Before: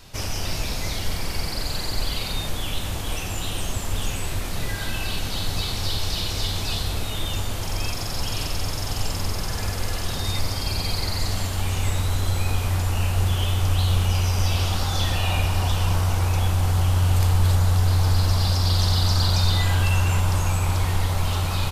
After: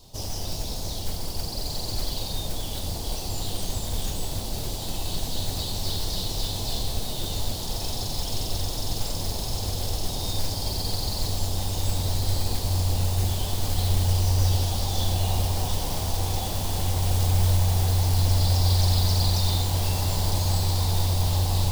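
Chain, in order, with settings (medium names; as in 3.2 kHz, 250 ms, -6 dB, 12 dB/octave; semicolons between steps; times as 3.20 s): Chebyshev band-stop 840–3800 Hz, order 2; modulation noise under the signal 16 dB; echo that smears into a reverb 1522 ms, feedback 73%, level -5 dB; trim -3 dB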